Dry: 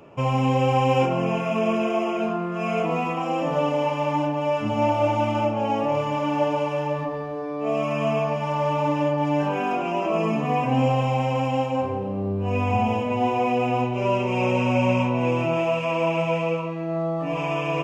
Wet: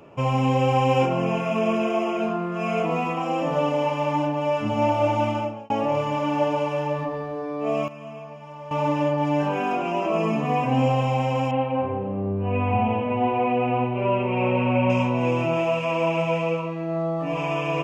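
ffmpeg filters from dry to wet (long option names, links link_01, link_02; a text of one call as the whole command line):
ffmpeg -i in.wav -filter_complex "[0:a]asettb=1/sr,asplit=3[link_01][link_02][link_03];[link_01]atrim=end=11.514[link_04];[link_02]atrim=start=11.51:end=14.9,asetpts=PTS-STARTPTS,afade=type=in:duration=0.004:curve=qsin,afade=type=out:start_time=3.386:duration=0.004:curve=qsin,lowpass=frequency=2900:width=0.5412,lowpass=frequency=2900:width=1.3066[link_05];[link_03]atrim=start=14.896[link_06];[link_04][link_05]acrossfade=duration=0.004:curve1=hsin:curve2=qsin[link_07];[link_07][link_06]acrossfade=duration=0.004:curve1=qsin:curve2=hsin,asplit=4[link_08][link_09][link_10][link_11];[link_08]atrim=end=5.7,asetpts=PTS-STARTPTS,afade=type=out:start_time=5.27:duration=0.43[link_12];[link_09]atrim=start=5.7:end=7.88,asetpts=PTS-STARTPTS,afade=type=in:duration=0.004:curve=hsin,afade=type=out:start_time=1.99:duration=0.19:curve=log:silence=0.177828[link_13];[link_10]atrim=start=7.88:end=8.71,asetpts=PTS-STARTPTS,volume=-15dB[link_14];[link_11]atrim=start=8.71,asetpts=PTS-STARTPTS,afade=type=in:duration=0.19:curve=log:silence=0.177828[link_15];[link_12][link_13][link_14][link_15]concat=n=4:v=0:a=1" out.wav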